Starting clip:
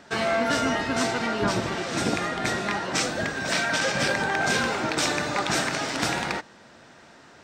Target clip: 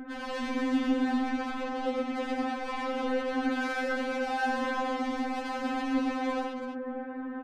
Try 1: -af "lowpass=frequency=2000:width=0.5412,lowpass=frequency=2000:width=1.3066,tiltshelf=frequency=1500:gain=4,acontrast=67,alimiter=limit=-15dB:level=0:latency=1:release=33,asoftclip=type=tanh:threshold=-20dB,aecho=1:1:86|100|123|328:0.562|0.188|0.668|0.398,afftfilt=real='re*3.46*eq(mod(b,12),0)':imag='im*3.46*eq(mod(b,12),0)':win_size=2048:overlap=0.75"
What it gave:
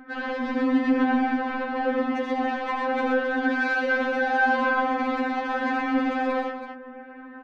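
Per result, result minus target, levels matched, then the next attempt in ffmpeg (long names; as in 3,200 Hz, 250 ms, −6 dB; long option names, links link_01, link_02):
soft clipping: distortion −8 dB; 2,000 Hz band +3.0 dB
-af "lowpass=frequency=2000:width=0.5412,lowpass=frequency=2000:width=1.3066,tiltshelf=frequency=1500:gain=4,acontrast=67,alimiter=limit=-15dB:level=0:latency=1:release=33,asoftclip=type=tanh:threshold=-30dB,aecho=1:1:86|100|123|328:0.562|0.188|0.668|0.398,afftfilt=real='re*3.46*eq(mod(b,12),0)':imag='im*3.46*eq(mod(b,12),0)':win_size=2048:overlap=0.75"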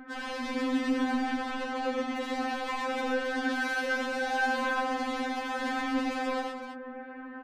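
2,000 Hz band +3.5 dB
-af "lowpass=frequency=2000:width=0.5412,lowpass=frequency=2000:width=1.3066,tiltshelf=frequency=1500:gain=12.5,acontrast=67,alimiter=limit=-15dB:level=0:latency=1:release=33,asoftclip=type=tanh:threshold=-30dB,aecho=1:1:86|100|123|328:0.562|0.188|0.668|0.398,afftfilt=real='re*3.46*eq(mod(b,12),0)':imag='im*3.46*eq(mod(b,12),0)':win_size=2048:overlap=0.75"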